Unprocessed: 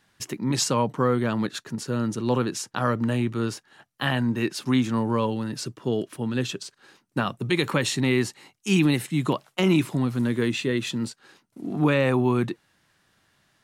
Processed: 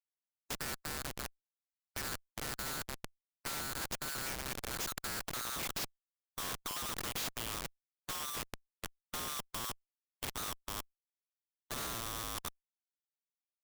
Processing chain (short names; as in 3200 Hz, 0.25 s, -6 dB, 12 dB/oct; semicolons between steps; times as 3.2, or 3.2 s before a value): band-swap scrambler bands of 1000 Hz; Doppler pass-by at 5.54, 48 m/s, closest 13 m; HPF 270 Hz 6 dB/oct; high shelf 4300 Hz +9.5 dB; downsampling 16000 Hz; bell 1200 Hz +7 dB 0.36 oct; compressor 16:1, threshold -32 dBFS, peak gain reduction 17 dB; LFO high-pass sine 0.72 Hz 540–3500 Hz; Schmitt trigger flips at -39.5 dBFS; spectral compressor 2:1; gain +10.5 dB